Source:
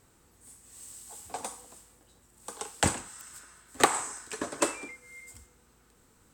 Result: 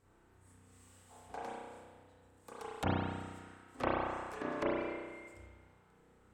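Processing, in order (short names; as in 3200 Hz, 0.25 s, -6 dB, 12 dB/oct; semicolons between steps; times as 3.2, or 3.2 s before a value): self-modulated delay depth 0.87 ms; high shelf 3000 Hz -9.5 dB; treble ducked by the level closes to 810 Hz, closed at -25.5 dBFS; spring tank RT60 1.5 s, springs 32 ms, chirp 65 ms, DRR -7 dB; gain -8 dB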